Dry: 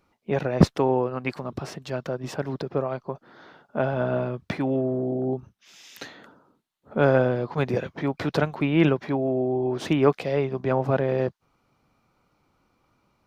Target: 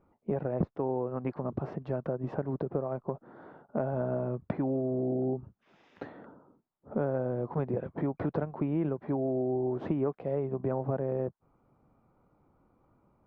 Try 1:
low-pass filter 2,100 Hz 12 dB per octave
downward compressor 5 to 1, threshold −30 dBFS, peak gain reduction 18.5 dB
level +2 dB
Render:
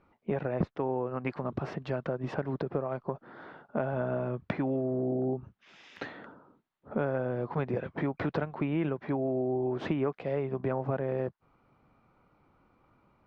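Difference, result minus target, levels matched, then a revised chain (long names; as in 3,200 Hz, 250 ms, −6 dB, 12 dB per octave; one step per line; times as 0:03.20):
2,000 Hz band +9.0 dB
low-pass filter 910 Hz 12 dB per octave
downward compressor 5 to 1, threshold −30 dBFS, peak gain reduction 18.5 dB
level +2 dB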